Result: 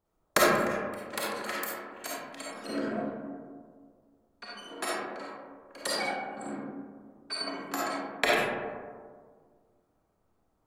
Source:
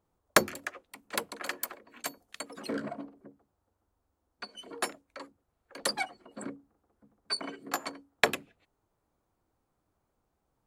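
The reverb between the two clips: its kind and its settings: algorithmic reverb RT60 1.8 s, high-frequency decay 0.3×, pre-delay 10 ms, DRR -7 dB; trim -4.5 dB

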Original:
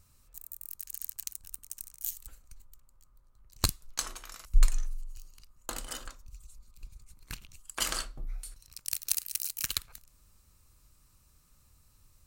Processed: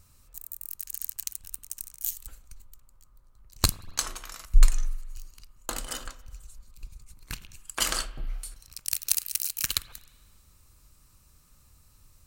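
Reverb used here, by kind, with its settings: spring tank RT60 1.6 s, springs 39/49 ms, chirp 50 ms, DRR 17.5 dB; trim +4.5 dB

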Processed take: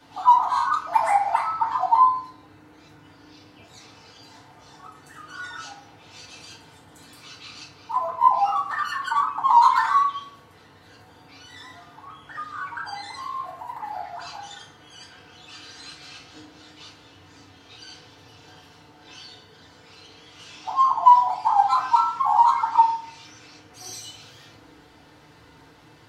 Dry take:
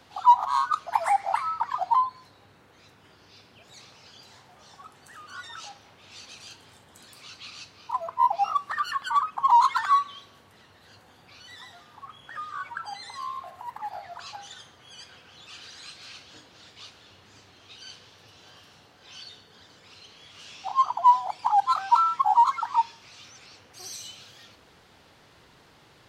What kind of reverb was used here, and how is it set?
FDN reverb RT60 0.55 s, low-frequency decay 1.3×, high-frequency decay 0.5×, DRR -6.5 dB; trim -4 dB

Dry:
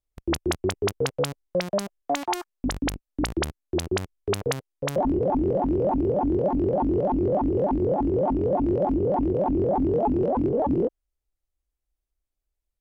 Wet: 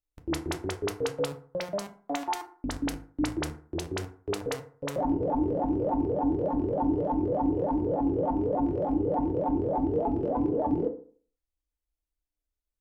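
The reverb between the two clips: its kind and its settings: FDN reverb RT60 0.46 s, low-frequency decay 1×, high-frequency decay 0.5×, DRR 4 dB; trim -7 dB

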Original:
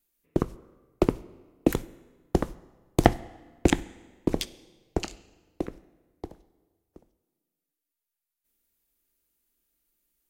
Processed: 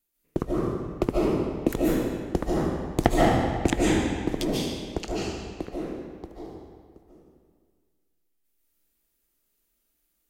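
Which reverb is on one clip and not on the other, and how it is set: algorithmic reverb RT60 1.7 s, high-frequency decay 0.85×, pre-delay 105 ms, DRR -6 dB; trim -3 dB

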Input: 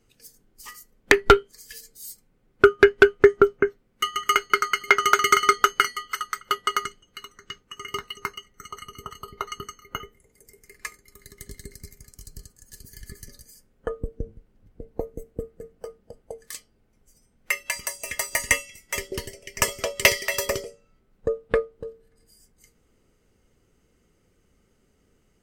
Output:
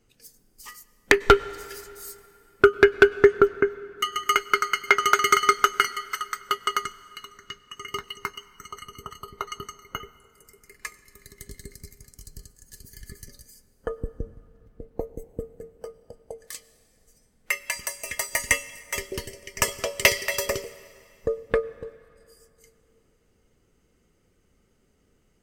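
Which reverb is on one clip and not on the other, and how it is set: plate-style reverb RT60 2.7 s, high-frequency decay 0.85×, pre-delay 85 ms, DRR 18.5 dB; trim -1 dB

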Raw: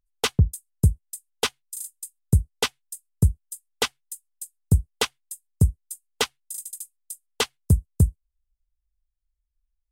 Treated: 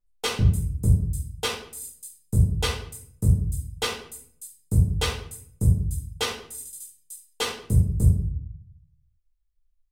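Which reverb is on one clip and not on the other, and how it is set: simulated room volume 98 m³, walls mixed, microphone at 1.9 m; trim -9.5 dB

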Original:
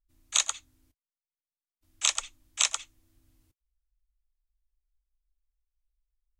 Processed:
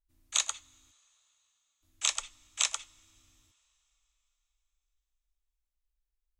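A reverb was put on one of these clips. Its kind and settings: two-slope reverb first 0.28 s, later 4 s, from -22 dB, DRR 17 dB; trim -3.5 dB

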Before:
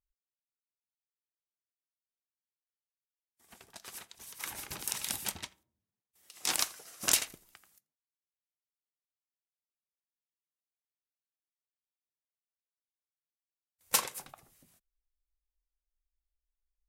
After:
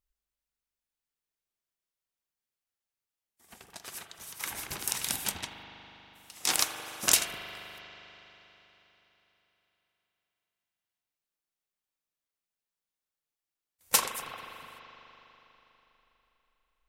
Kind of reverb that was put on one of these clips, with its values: spring tank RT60 3.8 s, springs 40 ms, chirp 75 ms, DRR 5 dB; trim +3.5 dB

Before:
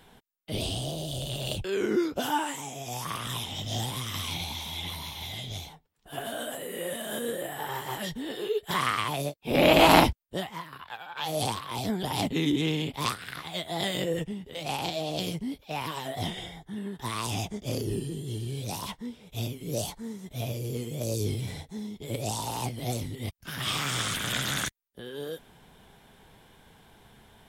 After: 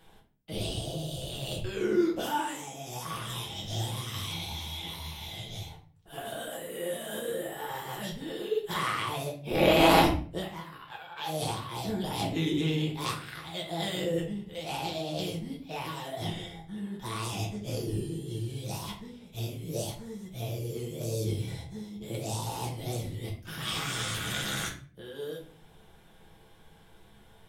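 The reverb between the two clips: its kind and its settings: simulated room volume 35 m³, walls mixed, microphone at 0.68 m; trim -6.5 dB

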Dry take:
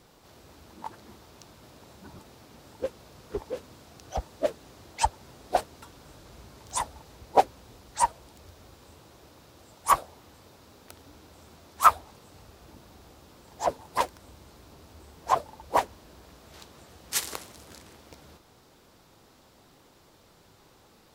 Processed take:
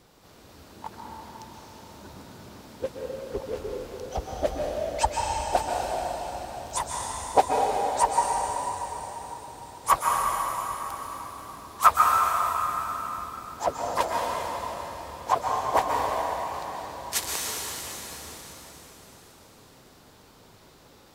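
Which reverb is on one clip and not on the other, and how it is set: plate-style reverb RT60 4.4 s, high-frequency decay 0.95×, pre-delay 110 ms, DRR -2.5 dB

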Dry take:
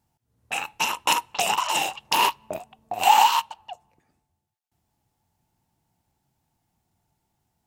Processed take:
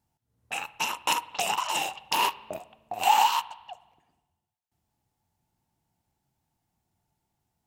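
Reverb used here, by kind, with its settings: spring tank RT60 1.1 s, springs 51 ms, chirp 25 ms, DRR 18 dB; trim -4.5 dB

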